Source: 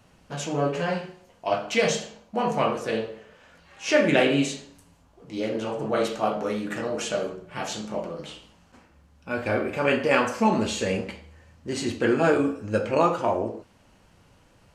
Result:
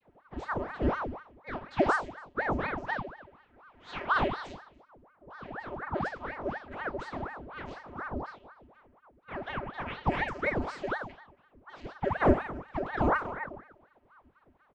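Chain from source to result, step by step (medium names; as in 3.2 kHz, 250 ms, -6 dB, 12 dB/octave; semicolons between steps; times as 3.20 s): delay 284 ms -19.5 dB; vocoder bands 32, square 161 Hz; level-controlled noise filter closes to 2.3 kHz, open at -17.5 dBFS; ring modulator with a swept carrier 740 Hz, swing 90%, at 4.1 Hz; trim -3.5 dB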